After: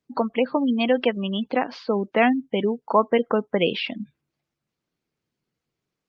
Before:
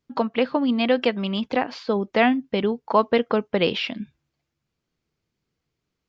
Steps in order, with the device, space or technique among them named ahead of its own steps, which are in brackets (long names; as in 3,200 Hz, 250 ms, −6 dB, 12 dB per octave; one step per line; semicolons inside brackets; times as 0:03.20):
noise-suppressed video call (high-pass filter 120 Hz 12 dB per octave; gate on every frequency bin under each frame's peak −25 dB strong; Opus 32 kbit/s 48,000 Hz)